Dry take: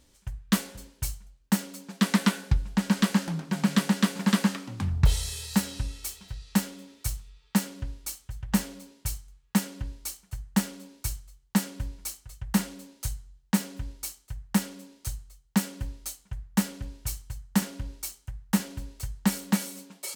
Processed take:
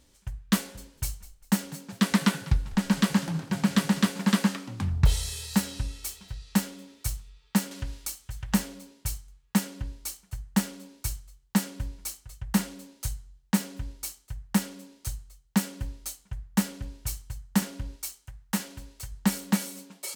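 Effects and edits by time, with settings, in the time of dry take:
0:00.73–0:04.10: echo with shifted repeats 199 ms, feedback 35%, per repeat −43 Hz, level −18 dB
0:07.71–0:08.64: one half of a high-frequency compander encoder only
0:17.96–0:19.12: low-shelf EQ 480 Hz −6.5 dB

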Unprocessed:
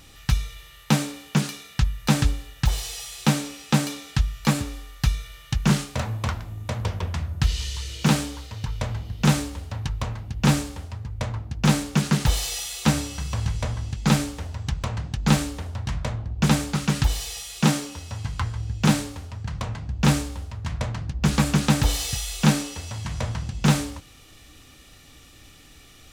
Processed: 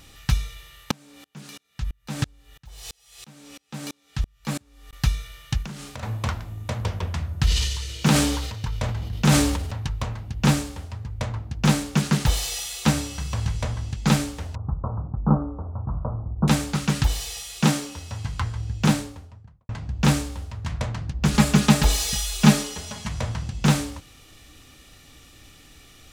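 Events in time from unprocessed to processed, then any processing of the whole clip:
0:00.91–0:04.93: tremolo with a ramp in dB swelling 3 Hz, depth 35 dB
0:05.62–0:06.03: downward compressor 10 to 1, threshold −32 dBFS
0:07.36–0:09.71: level that may fall only so fast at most 41 dB per second
0:14.55–0:16.48: Butterworth low-pass 1,300 Hz 72 dB per octave
0:18.78–0:19.69: fade out and dull
0:21.34–0:23.09: comb filter 4.8 ms, depth 94%

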